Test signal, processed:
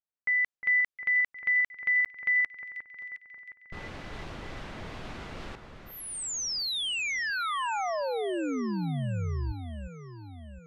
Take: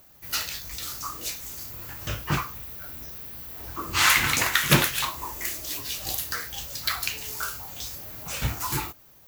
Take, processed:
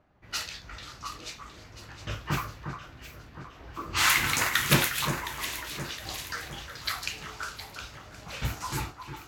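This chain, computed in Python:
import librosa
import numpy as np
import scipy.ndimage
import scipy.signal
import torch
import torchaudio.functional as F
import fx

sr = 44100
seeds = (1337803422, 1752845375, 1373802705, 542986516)

y = fx.env_lowpass(x, sr, base_hz=1600.0, full_db=-22.0)
y = fx.echo_alternate(y, sr, ms=357, hz=1900.0, feedback_pct=69, wet_db=-7.5)
y = y * 10.0 ** (-3.5 / 20.0)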